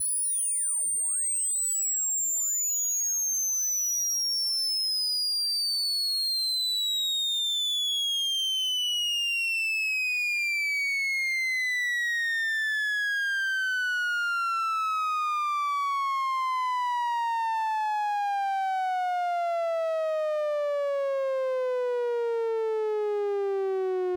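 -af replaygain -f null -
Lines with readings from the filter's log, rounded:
track_gain = +6.2 dB
track_peak = 0.063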